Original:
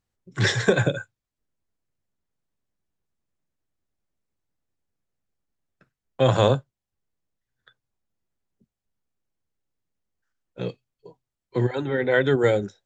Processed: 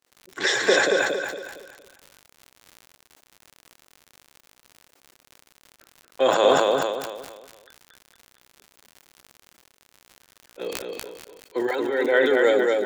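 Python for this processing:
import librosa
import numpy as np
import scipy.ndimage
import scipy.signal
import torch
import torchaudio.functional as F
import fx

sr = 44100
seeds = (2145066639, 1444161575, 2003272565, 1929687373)

p1 = scipy.signal.sosfilt(scipy.signal.butter(4, 310.0, 'highpass', fs=sr, output='sos'), x)
p2 = p1 + fx.echo_feedback(p1, sr, ms=230, feedback_pct=37, wet_db=-3, dry=0)
p3 = fx.dmg_crackle(p2, sr, seeds[0], per_s=90.0, level_db=-35.0)
y = fx.sustainer(p3, sr, db_per_s=37.0)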